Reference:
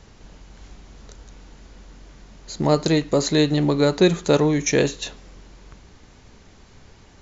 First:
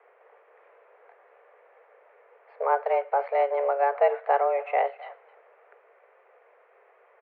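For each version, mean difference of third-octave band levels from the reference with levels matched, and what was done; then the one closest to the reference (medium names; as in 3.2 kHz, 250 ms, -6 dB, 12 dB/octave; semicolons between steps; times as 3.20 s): 12.5 dB: speakerphone echo 260 ms, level -17 dB; mistuned SSB +280 Hz 160–2000 Hz; trim -5 dB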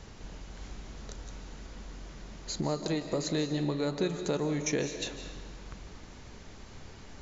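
8.0 dB: compression 3:1, threshold -33 dBFS, peak gain reduction 16 dB; algorithmic reverb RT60 1.4 s, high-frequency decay 0.8×, pre-delay 115 ms, DRR 8 dB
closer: second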